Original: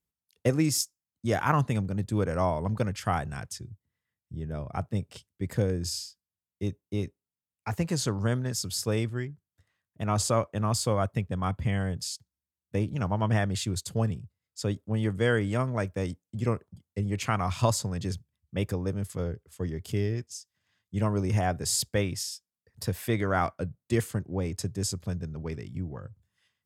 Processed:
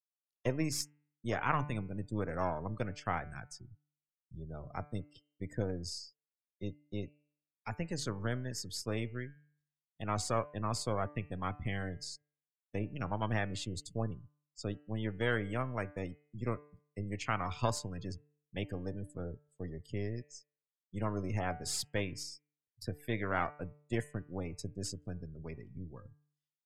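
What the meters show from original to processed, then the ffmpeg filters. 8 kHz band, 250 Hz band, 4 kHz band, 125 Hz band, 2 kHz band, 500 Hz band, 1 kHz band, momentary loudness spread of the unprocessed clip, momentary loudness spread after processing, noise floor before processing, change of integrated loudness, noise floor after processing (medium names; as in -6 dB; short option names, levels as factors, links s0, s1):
-10.5 dB, -9.0 dB, -8.0 dB, -10.0 dB, -4.5 dB, -8.0 dB, -6.5 dB, 11 LU, 13 LU, under -85 dBFS, -8.5 dB, under -85 dBFS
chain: -filter_complex "[0:a]aeval=exprs='if(lt(val(0),0),0.447*val(0),val(0))':c=same,tiltshelf=f=970:g=-3.5,acrossover=split=440|3900[s0][s1][s2];[s2]acompressor=mode=upward:threshold=0.00794:ratio=2.5[s3];[s0][s1][s3]amix=inputs=3:normalize=0,afftdn=nr=33:nf=-41,highshelf=f=6100:g=-10.5,bandreject=f=147.6:t=h:w=4,bandreject=f=295.2:t=h:w=4,bandreject=f=442.8:t=h:w=4,bandreject=f=590.4:t=h:w=4,bandreject=f=738:t=h:w=4,bandreject=f=885.6:t=h:w=4,bandreject=f=1033.2:t=h:w=4,bandreject=f=1180.8:t=h:w=4,bandreject=f=1328.4:t=h:w=4,bandreject=f=1476:t=h:w=4,bandreject=f=1623.6:t=h:w=4,bandreject=f=1771.2:t=h:w=4,bandreject=f=1918.8:t=h:w=4,bandreject=f=2066.4:t=h:w=4,bandreject=f=2214:t=h:w=4,bandreject=f=2361.6:t=h:w=4,bandreject=f=2509.2:t=h:w=4,bandreject=f=2656.8:t=h:w=4,bandreject=f=2804.4:t=h:w=4,bandreject=f=2952:t=h:w=4,bandreject=f=3099.6:t=h:w=4,volume=0.631"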